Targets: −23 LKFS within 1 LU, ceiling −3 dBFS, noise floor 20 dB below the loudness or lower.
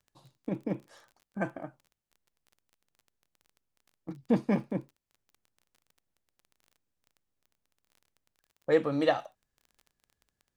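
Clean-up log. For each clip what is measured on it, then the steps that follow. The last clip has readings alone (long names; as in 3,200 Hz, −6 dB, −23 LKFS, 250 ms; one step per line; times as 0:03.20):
crackle rate 21 per second; integrated loudness −31.0 LKFS; sample peak −12.0 dBFS; target loudness −23.0 LKFS
→ click removal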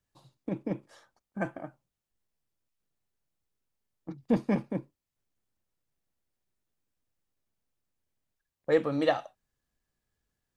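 crackle rate 0 per second; integrated loudness −31.0 LKFS; sample peak −12.0 dBFS; target loudness −23.0 LKFS
→ level +8 dB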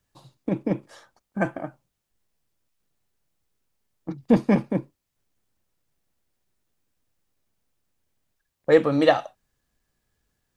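integrated loudness −23.5 LKFS; sample peak −4.0 dBFS; background noise floor −80 dBFS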